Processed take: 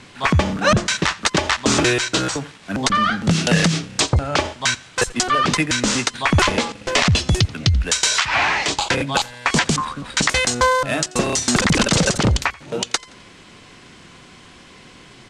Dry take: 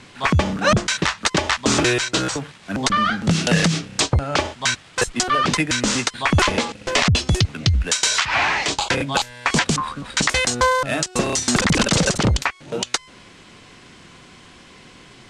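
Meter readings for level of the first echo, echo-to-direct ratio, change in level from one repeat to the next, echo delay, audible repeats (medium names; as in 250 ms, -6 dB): -23.0 dB, -22.0 dB, -7.5 dB, 86 ms, 2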